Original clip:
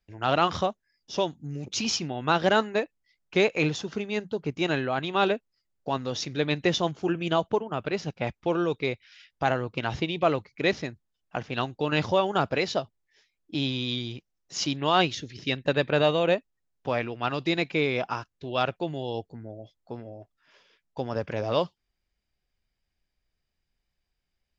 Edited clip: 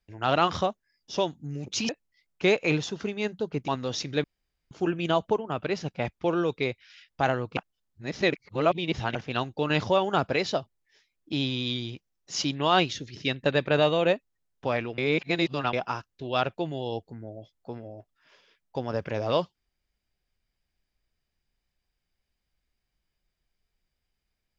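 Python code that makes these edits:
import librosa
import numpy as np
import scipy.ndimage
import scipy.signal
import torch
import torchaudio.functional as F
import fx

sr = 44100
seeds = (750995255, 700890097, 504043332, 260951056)

y = fx.edit(x, sr, fx.cut(start_s=1.89, length_s=0.92),
    fx.cut(start_s=4.6, length_s=1.3),
    fx.room_tone_fill(start_s=6.46, length_s=0.47),
    fx.reverse_span(start_s=9.79, length_s=1.58),
    fx.reverse_span(start_s=17.2, length_s=0.75), tone=tone)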